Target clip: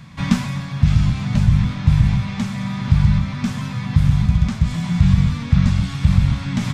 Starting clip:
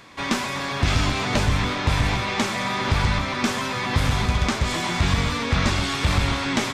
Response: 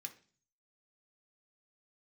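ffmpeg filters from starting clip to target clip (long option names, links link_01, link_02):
-af "lowshelf=frequency=250:width_type=q:width=3:gain=13.5,dynaudnorm=framelen=330:gausssize=3:maxgain=11.5dB,volume=-1dB"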